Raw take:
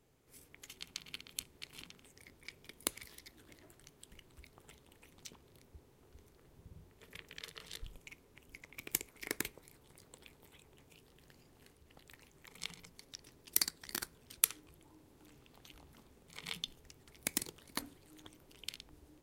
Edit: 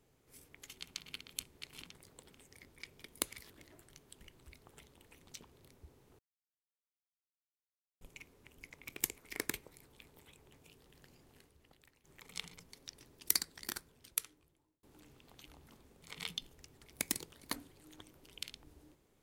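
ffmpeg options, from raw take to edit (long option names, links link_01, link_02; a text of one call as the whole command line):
ffmpeg -i in.wav -filter_complex "[0:a]asplit=9[link_01][link_02][link_03][link_04][link_05][link_06][link_07][link_08][link_09];[link_01]atrim=end=1.952[link_10];[link_02]atrim=start=9.898:end=10.252[link_11];[link_03]atrim=start=1.948:end=3.152[link_12];[link_04]atrim=start=3.408:end=6.1,asetpts=PTS-STARTPTS,afade=type=out:start_time=2.688:duration=0.004:curve=hsin[link_13];[link_05]atrim=start=6.1:end=7.92,asetpts=PTS-STARTPTS,volume=0[link_14];[link_06]atrim=start=7.92:end=9.902,asetpts=PTS-STARTPTS,afade=type=in:duration=0.004:curve=hsin[link_15];[link_07]atrim=start=10.248:end=12.3,asetpts=PTS-STARTPTS,afade=type=out:start_time=1.262:duration=0.79:silence=0.199526[link_16];[link_08]atrim=start=12.3:end=15.09,asetpts=PTS-STARTPTS,afade=type=in:duration=0.004:curve=hsin:silence=0.199526,afade=type=out:start_time=1.43:duration=1.36[link_17];[link_09]atrim=start=15.09,asetpts=PTS-STARTPTS,afade=type=in:duration=0.004:curve=hsin[link_18];[link_10][link_11]acrossfade=duration=0.004:curve1=hsin:curve2=hsin[link_19];[link_19][link_12]acrossfade=duration=0.004:curve1=hsin:curve2=hsin[link_20];[link_13][link_14][link_15]concat=n=3:v=0:a=1[link_21];[link_20][link_21]acrossfade=duration=0.004:curve1=hsin:curve2=hsin[link_22];[link_16][link_17][link_18]concat=n=3:v=0:a=1[link_23];[link_22][link_23]acrossfade=duration=0.004:curve1=hsin:curve2=hsin" out.wav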